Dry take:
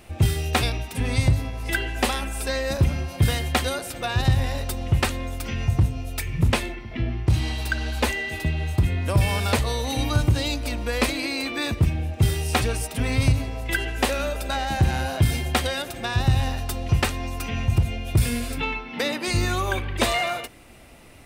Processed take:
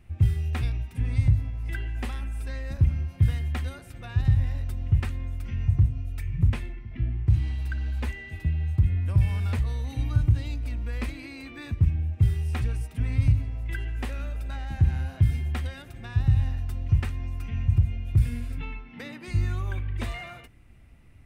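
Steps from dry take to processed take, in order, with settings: FFT filter 100 Hz 0 dB, 580 Hz -19 dB, 2 kHz -12 dB, 4.1 kHz -20 dB

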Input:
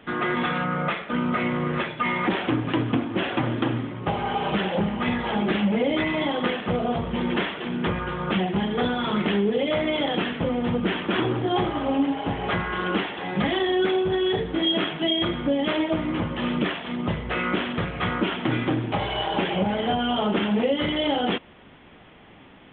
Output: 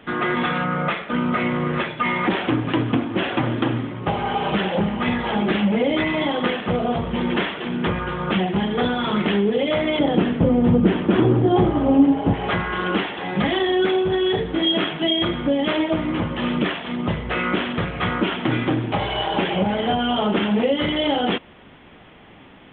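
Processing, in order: 9.99–12.34 s: tilt shelf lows +7.5 dB, about 790 Hz; trim +3 dB

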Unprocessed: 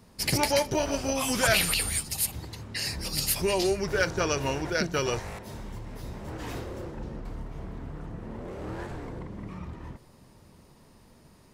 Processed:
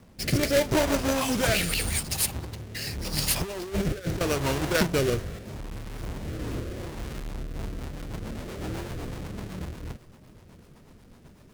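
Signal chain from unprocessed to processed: square wave that keeps the level; 3.41–4.21 s: compressor with a negative ratio -27 dBFS, ratio -0.5; rotary cabinet horn 0.8 Hz, later 8 Hz, at 7.20 s

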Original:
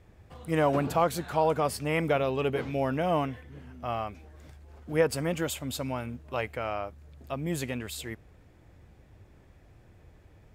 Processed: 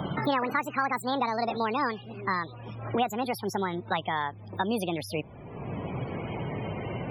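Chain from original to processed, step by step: gliding tape speed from 178% -> 119%; loudest bins only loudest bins 64; three bands compressed up and down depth 100%

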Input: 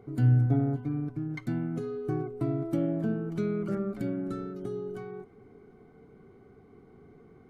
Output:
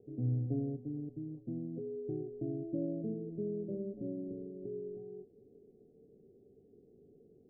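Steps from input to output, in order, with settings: steep low-pass 570 Hz 48 dB/octave; bass shelf 290 Hz -12 dB; trim -1.5 dB

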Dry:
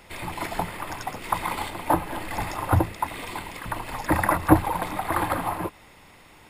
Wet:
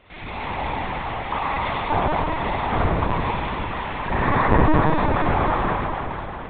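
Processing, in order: Schroeder reverb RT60 4 s, combs from 28 ms, DRR -9 dB; LPC vocoder at 8 kHz pitch kept; trim -4 dB

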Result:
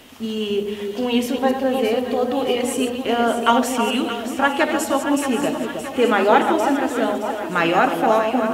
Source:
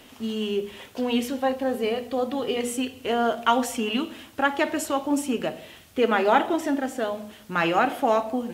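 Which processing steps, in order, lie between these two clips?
chunks repeated in reverse 126 ms, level -8 dB; echo whose repeats swap between lows and highs 311 ms, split 1.3 kHz, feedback 74%, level -6.5 dB; trim +4 dB

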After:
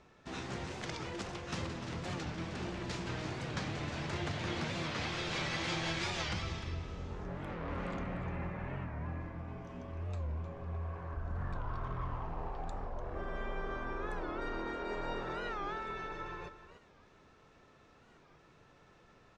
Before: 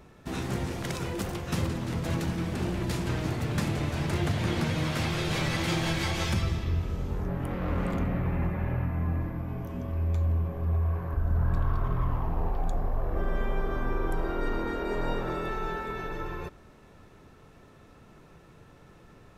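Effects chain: low-pass 6.9 kHz 24 dB/octave; bass shelf 380 Hz -8.5 dB; on a send: delay 299 ms -12 dB; on the sum: warped record 45 rpm, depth 160 cents; trim -4.5 dB

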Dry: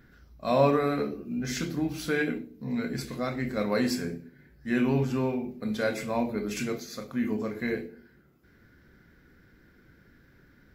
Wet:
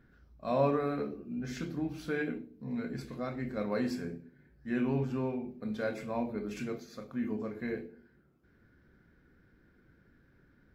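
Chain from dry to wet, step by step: treble shelf 3.5 kHz -11 dB; band-stop 2 kHz, Q 18; trim -5.5 dB

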